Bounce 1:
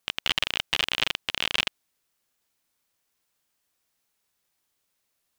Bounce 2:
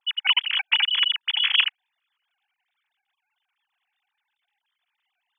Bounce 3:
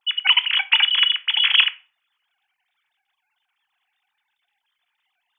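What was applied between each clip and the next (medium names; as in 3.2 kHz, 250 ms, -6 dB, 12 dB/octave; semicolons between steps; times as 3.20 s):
formants replaced by sine waves; treble shelf 2.4 kHz +10.5 dB
reverberation RT60 0.40 s, pre-delay 7 ms, DRR 11.5 dB; trim +4 dB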